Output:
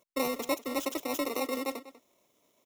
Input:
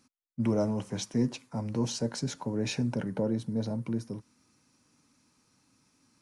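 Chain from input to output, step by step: FFT order left unsorted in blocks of 64 samples; outdoor echo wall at 78 m, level -16 dB; speed mistake 33 rpm record played at 78 rpm

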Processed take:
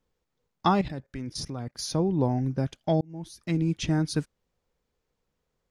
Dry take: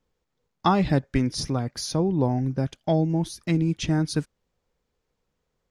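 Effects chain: 0.81–1.81 level quantiser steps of 16 dB; 3.01–3.67 fade in; gain -2 dB

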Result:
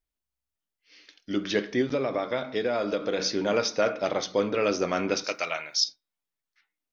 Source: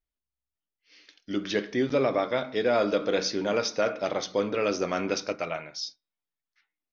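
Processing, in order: 1.81–3.2 compressor, threshold -25 dBFS, peak gain reduction 6 dB; 5.24–5.84 tilt +4 dB/oct; gain +1.5 dB

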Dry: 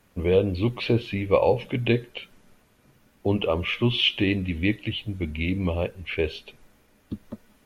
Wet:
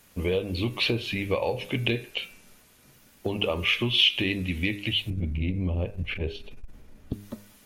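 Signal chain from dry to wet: short-mantissa float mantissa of 8-bit; 5.1–7.13 tilt -3.5 dB/oct; compressor 6:1, threshold -23 dBFS, peak gain reduction 11 dB; high shelf 2700 Hz +12 dB; de-hum 101.5 Hz, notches 27; core saturation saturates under 350 Hz

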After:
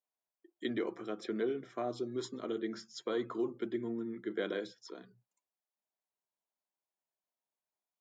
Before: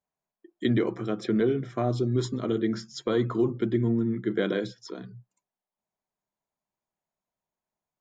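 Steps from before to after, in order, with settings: HPF 310 Hz 12 dB/oct; gain -7.5 dB

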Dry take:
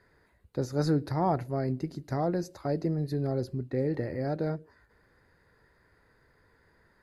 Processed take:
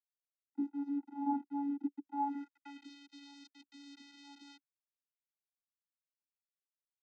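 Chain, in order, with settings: resonant low shelf 230 Hz -14 dB, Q 3; 0.63–1.26 compressor 2.5:1, threshold -30 dBFS, peak gain reduction 8.5 dB; requantised 6-bit, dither none; band-pass sweep 510 Hz -> 4000 Hz, 2.05–2.9; vocoder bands 16, square 283 Hz; gain -2.5 dB

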